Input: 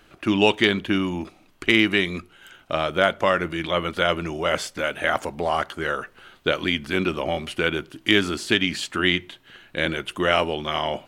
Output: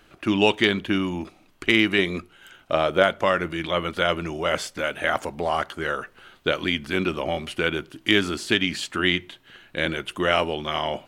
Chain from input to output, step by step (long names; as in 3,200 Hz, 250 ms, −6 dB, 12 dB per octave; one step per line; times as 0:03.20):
0:01.98–0:03.03: dynamic equaliser 510 Hz, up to +5 dB, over −37 dBFS, Q 0.73
level −1 dB